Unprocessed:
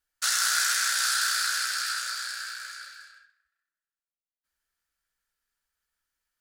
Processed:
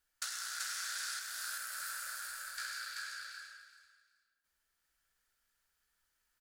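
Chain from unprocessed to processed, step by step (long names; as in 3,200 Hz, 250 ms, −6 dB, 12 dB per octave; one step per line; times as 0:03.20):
0:01.19–0:02.58: drawn EQ curve 150 Hz 0 dB, 4,800 Hz −20 dB, 13,000 Hz −4 dB
downward compressor 16 to 1, threshold −40 dBFS, peak gain reduction 19.5 dB
on a send: repeating echo 384 ms, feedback 21%, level −3 dB
on the sum: level +1.5 dB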